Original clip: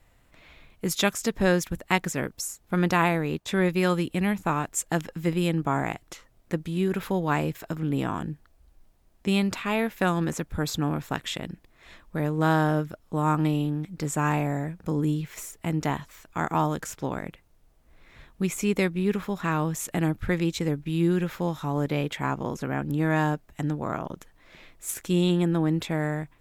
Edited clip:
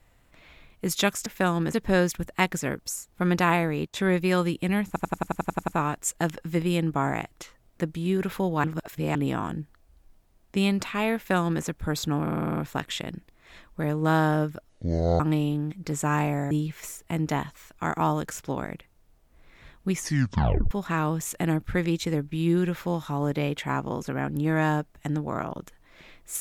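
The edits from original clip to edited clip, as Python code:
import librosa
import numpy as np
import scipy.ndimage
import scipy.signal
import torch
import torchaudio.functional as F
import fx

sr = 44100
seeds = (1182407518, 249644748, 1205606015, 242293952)

y = fx.edit(x, sr, fx.stutter(start_s=4.39, slice_s=0.09, count=10),
    fx.reverse_span(start_s=7.35, length_s=0.51),
    fx.duplicate(start_s=9.87, length_s=0.48, to_s=1.26),
    fx.stutter(start_s=10.93, slice_s=0.05, count=8),
    fx.speed_span(start_s=13.05, length_s=0.28, speed=0.55),
    fx.cut(start_s=14.64, length_s=0.41),
    fx.tape_stop(start_s=18.47, length_s=0.78), tone=tone)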